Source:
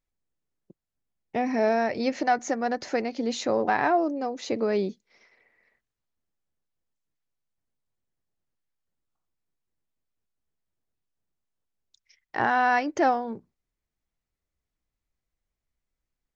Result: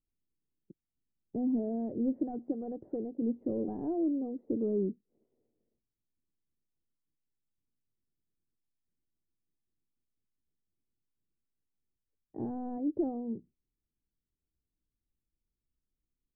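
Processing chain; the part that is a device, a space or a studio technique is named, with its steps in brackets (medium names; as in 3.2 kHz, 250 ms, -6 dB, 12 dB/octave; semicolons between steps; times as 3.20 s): overdriven synthesiser ladder filter (saturation -19 dBFS, distortion -15 dB; four-pole ladder low-pass 420 Hz, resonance 30%); 2.52–3.22 s: peaking EQ 240 Hz -7 dB 0.3 oct; trim +4 dB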